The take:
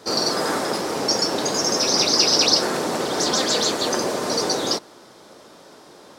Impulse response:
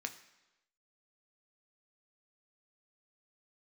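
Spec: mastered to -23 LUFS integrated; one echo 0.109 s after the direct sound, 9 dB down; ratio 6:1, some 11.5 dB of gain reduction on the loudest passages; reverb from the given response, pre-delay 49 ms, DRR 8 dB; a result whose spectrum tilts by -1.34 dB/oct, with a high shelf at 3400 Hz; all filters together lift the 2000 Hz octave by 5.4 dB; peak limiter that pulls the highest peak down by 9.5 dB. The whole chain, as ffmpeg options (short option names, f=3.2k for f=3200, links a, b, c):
-filter_complex "[0:a]equalizer=f=2k:t=o:g=6,highshelf=f=3.4k:g=3.5,acompressor=threshold=-23dB:ratio=6,alimiter=limit=-21dB:level=0:latency=1,aecho=1:1:109:0.355,asplit=2[a][b];[1:a]atrim=start_sample=2205,adelay=49[c];[b][c]afir=irnorm=-1:irlink=0,volume=-7.5dB[d];[a][d]amix=inputs=2:normalize=0,volume=4.5dB"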